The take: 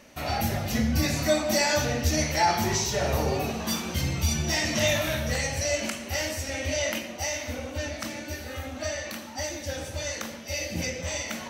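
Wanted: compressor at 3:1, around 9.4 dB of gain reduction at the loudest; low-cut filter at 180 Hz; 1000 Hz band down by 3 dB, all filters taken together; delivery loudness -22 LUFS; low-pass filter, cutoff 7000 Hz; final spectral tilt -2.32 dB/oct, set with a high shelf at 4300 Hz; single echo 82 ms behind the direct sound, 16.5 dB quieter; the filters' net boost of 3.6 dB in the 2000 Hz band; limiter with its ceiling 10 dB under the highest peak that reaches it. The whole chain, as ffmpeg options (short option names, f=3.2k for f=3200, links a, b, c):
-af "highpass=180,lowpass=7k,equalizer=f=1k:t=o:g=-5,equalizer=f=2k:t=o:g=4.5,highshelf=f=4.3k:g=4,acompressor=threshold=-32dB:ratio=3,alimiter=level_in=4.5dB:limit=-24dB:level=0:latency=1,volume=-4.5dB,aecho=1:1:82:0.15,volume=14.5dB"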